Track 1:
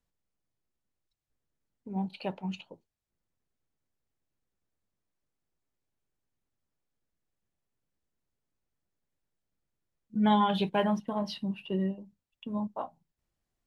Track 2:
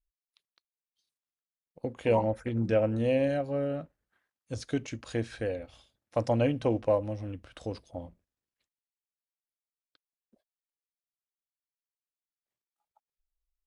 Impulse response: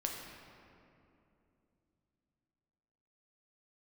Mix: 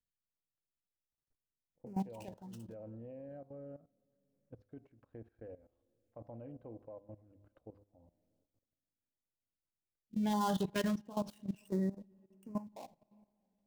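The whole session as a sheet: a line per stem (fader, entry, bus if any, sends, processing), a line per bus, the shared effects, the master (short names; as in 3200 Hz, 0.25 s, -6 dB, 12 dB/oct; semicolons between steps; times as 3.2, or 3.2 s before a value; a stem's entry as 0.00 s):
-2.0 dB, 0.00 s, send -22 dB, switching dead time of 0.12 ms; stepped notch 3 Hz 810–3600 Hz
-15.0 dB, 0.00 s, send -20.5 dB, LPF 1000 Hz 12 dB/oct; de-hum 101.1 Hz, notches 14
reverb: on, RT60 2.8 s, pre-delay 7 ms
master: level quantiser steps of 16 dB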